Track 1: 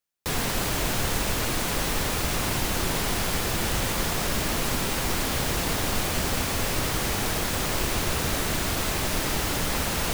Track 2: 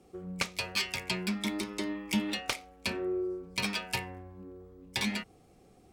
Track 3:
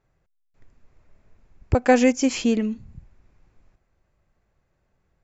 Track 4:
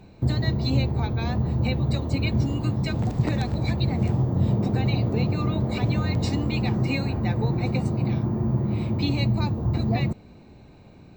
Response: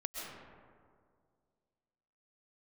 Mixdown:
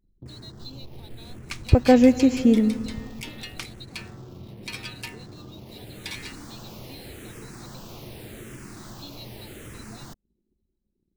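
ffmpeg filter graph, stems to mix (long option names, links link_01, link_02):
-filter_complex "[0:a]asplit=2[link_01][link_02];[link_02]afreqshift=-0.84[link_03];[link_01][link_03]amix=inputs=2:normalize=1,volume=-12.5dB,afade=type=in:start_time=5.56:duration=0.72:silence=0.334965,asplit=2[link_04][link_05];[link_05]volume=-16dB[link_06];[1:a]highpass=1100,adelay=1100,volume=-3dB[link_07];[2:a]tiltshelf=frequency=680:gain=7.5,volume=-3dB,asplit=2[link_08][link_09];[link_09]volume=-13.5dB[link_10];[3:a]highshelf=frequency=2700:width_type=q:width=3:gain=8.5,volume=-17.5dB[link_11];[link_04][link_11]amix=inputs=2:normalize=0,equalizer=frequency=360:width_type=o:width=1.1:gain=6.5,acompressor=threshold=-42dB:ratio=2,volume=0dB[link_12];[4:a]atrim=start_sample=2205[link_13];[link_06][link_10]amix=inputs=2:normalize=0[link_14];[link_14][link_13]afir=irnorm=-1:irlink=0[link_15];[link_07][link_08][link_12][link_15]amix=inputs=4:normalize=0,anlmdn=0.00251"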